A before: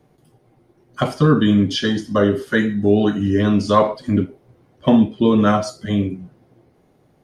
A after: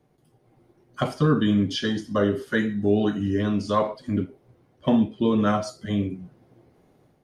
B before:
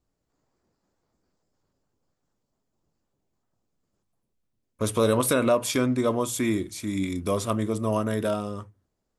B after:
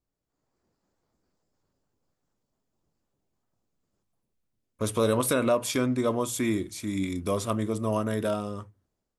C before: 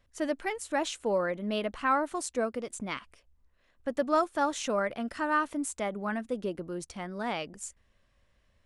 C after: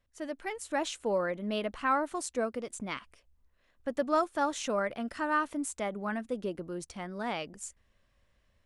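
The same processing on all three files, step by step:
automatic gain control gain up to 6.5 dB
level −8 dB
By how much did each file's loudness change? −6.5, −2.0, −1.5 LU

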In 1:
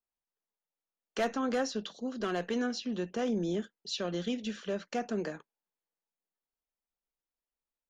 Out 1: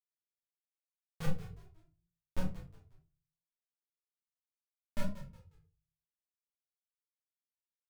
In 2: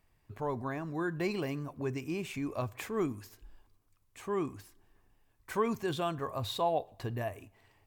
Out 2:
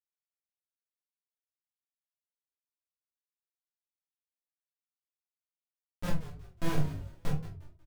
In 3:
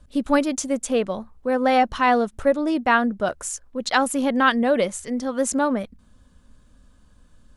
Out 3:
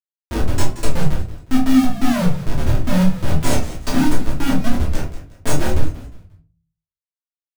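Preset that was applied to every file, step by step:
neighbouring bands swapped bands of 500 Hz
high-pass filter 52 Hz 24 dB per octave
brick-wall band-stop 400–3,800 Hz
dynamic equaliser 160 Hz, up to +7 dB, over −44 dBFS, Q 2
harmonic and percussive parts rebalanced harmonic +8 dB
low-shelf EQ 100 Hz −5 dB
in parallel at −1.5 dB: downward compressor 16 to 1, threshold −31 dBFS
on the sum: comparator with hysteresis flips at −19 dBFS
double-tracking delay 27 ms −5 dB
on a send: echo with shifted repeats 180 ms, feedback 32%, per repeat −55 Hz, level −14 dB
on the sum: rectangular room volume 180 cubic metres, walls furnished, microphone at 2.8 metres
wow of a warped record 45 rpm, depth 100 cents
level −4.5 dB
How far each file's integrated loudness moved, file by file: −9.5, −1.5, +1.0 LU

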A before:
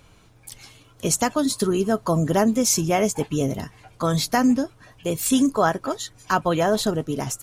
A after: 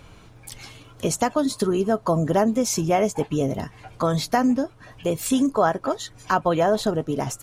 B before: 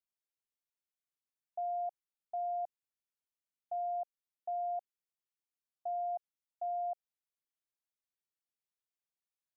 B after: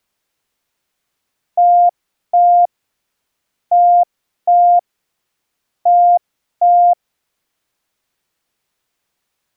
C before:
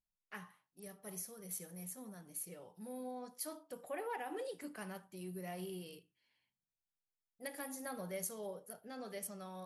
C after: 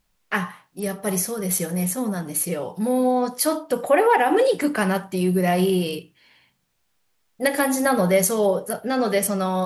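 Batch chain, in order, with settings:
high-shelf EQ 4,900 Hz −7 dB
downward compressor 1.5 to 1, threshold −40 dBFS
dynamic equaliser 670 Hz, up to +4 dB, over −41 dBFS, Q 0.98
normalise the peak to −6 dBFS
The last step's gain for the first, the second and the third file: +6.0, +25.0, +26.0 decibels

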